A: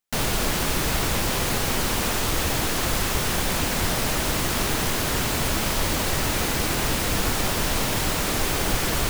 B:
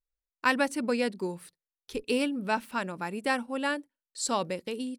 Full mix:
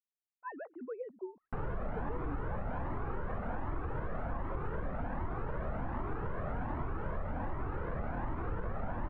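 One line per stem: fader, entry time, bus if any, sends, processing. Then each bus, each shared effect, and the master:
-0.5 dB, 1.40 s, no send, peak limiter -17 dBFS, peak gain reduction 6.5 dB; Shepard-style flanger rising 1.3 Hz
-14.5 dB, 0.00 s, no send, formants replaced by sine waves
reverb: none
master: low-pass 1.4 kHz 24 dB/octave; compression, threshold -32 dBFS, peak gain reduction 7 dB

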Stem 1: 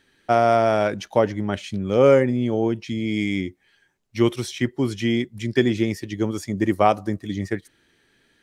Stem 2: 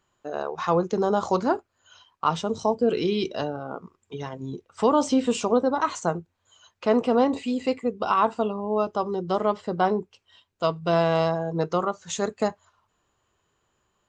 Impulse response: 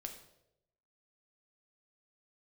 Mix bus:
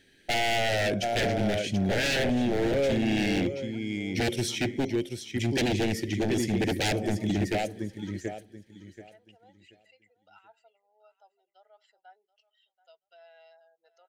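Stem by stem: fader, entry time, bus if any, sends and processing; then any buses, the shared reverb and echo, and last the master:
+1.0 dB, 0.00 s, muted 4.85–5.35 s, send -6 dB, echo send -7.5 dB, feedback comb 89 Hz, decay 0.16 s, harmonics all, mix 30%
-14.5 dB, 2.25 s, no send, echo send -18.5 dB, spectral contrast enhancement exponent 1.6; high-pass 1.1 kHz 24 dB/octave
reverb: on, RT60 0.85 s, pre-delay 3 ms
echo: feedback delay 731 ms, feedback 22%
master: wavefolder -18.5 dBFS; Butterworth band-stop 1.1 kHz, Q 1.3; saturation -17 dBFS, distortion -23 dB

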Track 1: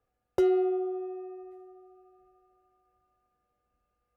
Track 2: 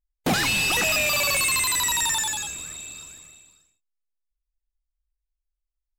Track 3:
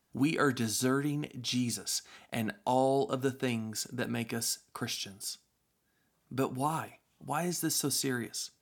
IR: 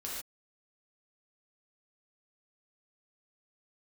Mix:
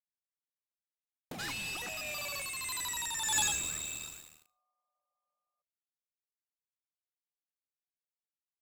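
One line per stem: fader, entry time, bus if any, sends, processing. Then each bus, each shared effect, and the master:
-13.5 dB, 1.45 s, no send, comb filter that takes the minimum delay 1.7 ms; FFT band-pass 500–1300 Hz
-5.5 dB, 1.05 s, send -21.5 dB, crossover distortion -45 dBFS
mute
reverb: on, pre-delay 3 ms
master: compressor with a negative ratio -34 dBFS, ratio -0.5

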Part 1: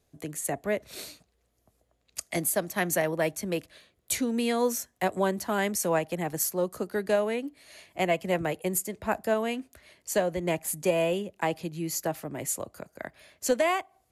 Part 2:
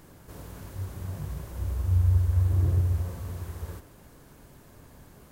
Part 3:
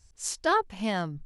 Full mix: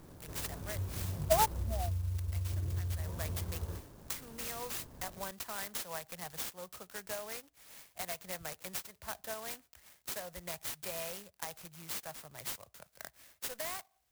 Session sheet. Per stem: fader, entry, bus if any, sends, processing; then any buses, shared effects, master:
0.0 dB, 0.00 s, bus A, no send, amplifier tone stack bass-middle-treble 10-0-10; compression 3:1, threshold -36 dBFS, peak gain reduction 9 dB
-1.5 dB, 0.00 s, bus A, no send, low-pass 2.4 kHz
-13.0 dB, 0.85 s, no bus, no send, peaking EQ 750 Hz +13 dB 1.6 oct; upward compressor, threshold -18 dBFS; spectral contrast expander 2.5:1
bus A: 0.0 dB, compression 16:1, threshold -32 dBFS, peak gain reduction 14.5 dB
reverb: none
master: sampling jitter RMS 0.1 ms

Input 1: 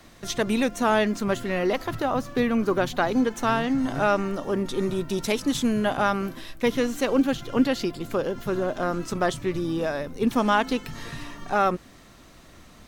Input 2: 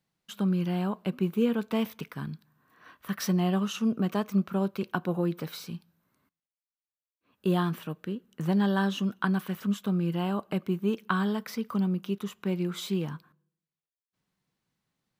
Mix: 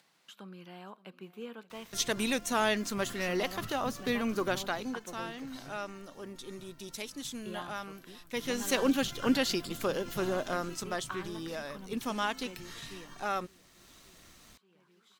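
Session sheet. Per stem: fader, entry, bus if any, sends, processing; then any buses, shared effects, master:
4.52 s -9 dB -> 5.06 s -19 dB -> 8.16 s -19 dB -> 8.70 s -6.5 dB -> 10.41 s -6.5 dB -> 10.96 s -13.5 dB, 1.70 s, no send, no echo send, treble shelf 2.1 kHz +11.5 dB; crossover distortion -54.5 dBFS
-11.5 dB, 0.00 s, no send, echo send -18.5 dB, frequency weighting A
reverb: none
echo: feedback delay 573 ms, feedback 51%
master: upward compressor, threshold -48 dBFS

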